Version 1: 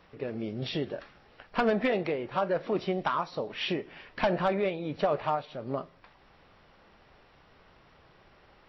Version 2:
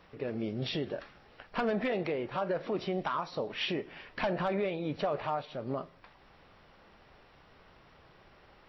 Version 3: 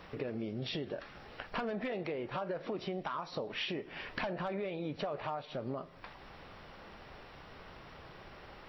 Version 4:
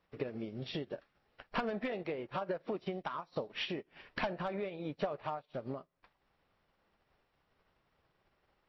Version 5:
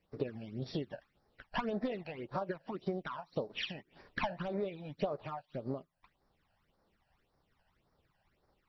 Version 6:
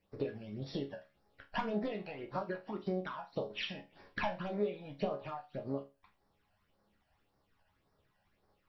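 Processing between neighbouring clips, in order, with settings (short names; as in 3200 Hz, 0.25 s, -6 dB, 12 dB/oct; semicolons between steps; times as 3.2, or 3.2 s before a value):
limiter -23.5 dBFS, peak gain reduction 5.5 dB
compressor 4:1, threshold -44 dBFS, peak gain reduction 14.5 dB; gain +7 dB
upward expander 2.5:1, over -55 dBFS; gain +4.5 dB
phaser stages 12, 1.8 Hz, lowest notch 360–2900 Hz; gain +2 dB
resonator bank C#2 sus4, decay 0.27 s; gain +10 dB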